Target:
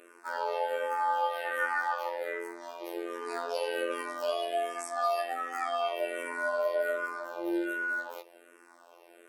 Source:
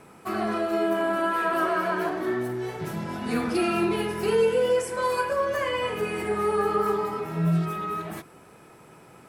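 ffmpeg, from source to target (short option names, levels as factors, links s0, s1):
-filter_complex "[0:a]afreqshift=200,afftfilt=real='hypot(re,im)*cos(PI*b)':imag='0':win_size=2048:overlap=0.75,asplit=2[s0][s1];[s1]afreqshift=-1.3[s2];[s0][s2]amix=inputs=2:normalize=1"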